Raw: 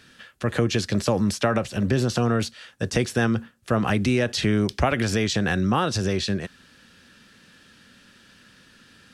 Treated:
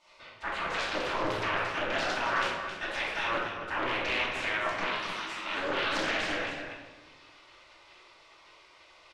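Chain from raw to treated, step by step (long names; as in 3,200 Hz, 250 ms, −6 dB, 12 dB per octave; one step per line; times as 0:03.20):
one-sided soft clipper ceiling −21 dBFS
0:04.86–0:05.46: high-pass filter 650 Hz 24 dB per octave
gate on every frequency bin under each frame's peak −15 dB weak
low-pass filter 2,500 Hz 12 dB per octave
spectral tilt +1.5 dB per octave
brickwall limiter −26.5 dBFS, peak gain reduction 9.5 dB
single-tap delay 267 ms −9 dB
rectangular room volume 520 cubic metres, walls mixed, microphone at 2.6 metres
highs frequency-modulated by the lows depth 0.37 ms
level +2 dB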